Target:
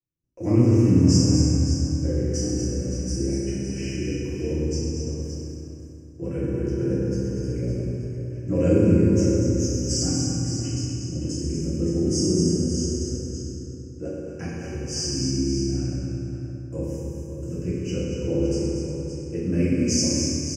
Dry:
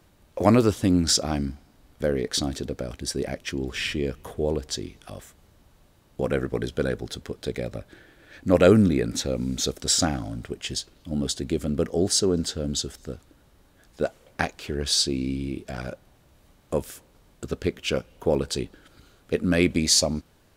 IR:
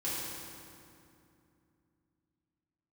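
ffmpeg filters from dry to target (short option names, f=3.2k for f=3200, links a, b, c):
-filter_complex "[0:a]agate=range=-31dB:threshold=-51dB:ratio=16:detection=peak,firequalizer=gain_entry='entry(180,0);entry(810,-17);entry(6200,-1);entry(9900,-17)':delay=0.05:min_phase=1,flanger=delay=7.8:depth=8.7:regen=45:speed=0.2:shape=sinusoidal,asuperstop=centerf=3800:order=20:qfactor=2.2,aecho=1:1:239|566:0.447|0.335[a];[1:a]atrim=start_sample=2205[b];[a][b]afir=irnorm=-1:irlink=0,volume=1.5dB"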